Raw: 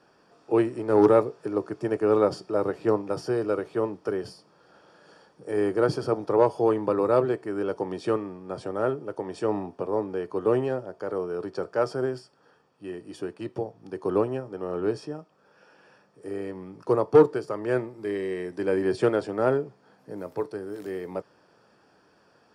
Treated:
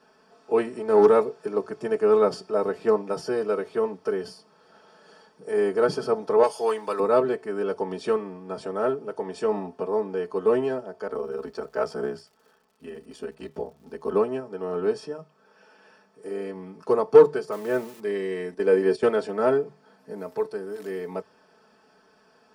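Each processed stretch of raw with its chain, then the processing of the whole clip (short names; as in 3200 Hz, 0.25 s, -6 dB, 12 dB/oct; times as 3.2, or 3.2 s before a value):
6.43–7 tilt +4 dB/oct + three-band expander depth 40%
11.07–14.12 ring modulator 34 Hz + crackle 76/s -51 dBFS
17.52–18 switching spikes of -29 dBFS + high shelf 2900 Hz -9.5 dB
18.54–19.03 HPF 130 Hz + bell 450 Hz +6 dB 0.45 oct + gate -30 dBFS, range -9 dB
whole clip: low shelf 360 Hz -3 dB; notches 50/100/150 Hz; comb 4.6 ms, depth 82%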